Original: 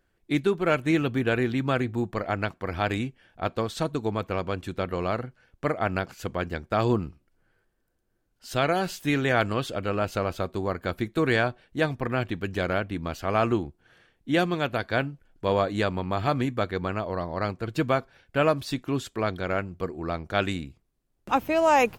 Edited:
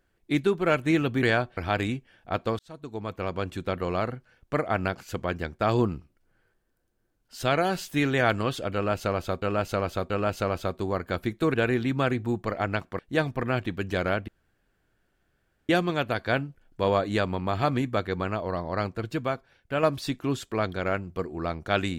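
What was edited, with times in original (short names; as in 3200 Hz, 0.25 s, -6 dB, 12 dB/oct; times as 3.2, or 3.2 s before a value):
1.23–2.68 swap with 11.29–11.63
3.7–4.56 fade in
9.85–10.53 loop, 3 plays
12.92–14.33 room tone
17.74–18.47 gain -4.5 dB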